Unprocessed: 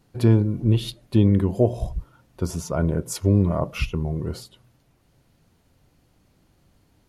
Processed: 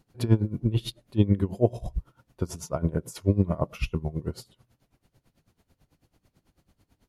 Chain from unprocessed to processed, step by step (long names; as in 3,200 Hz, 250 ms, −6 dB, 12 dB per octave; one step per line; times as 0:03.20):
tremolo with a sine in dB 9.1 Hz, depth 19 dB